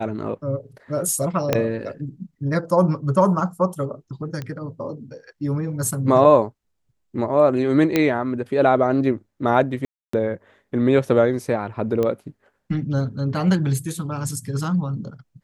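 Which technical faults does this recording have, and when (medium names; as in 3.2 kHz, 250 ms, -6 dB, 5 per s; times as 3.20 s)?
1.53 s: pop -5 dBFS
4.42 s: pop -17 dBFS
7.96 s: pop -5 dBFS
9.85–10.13 s: dropout 284 ms
12.03 s: pop -12 dBFS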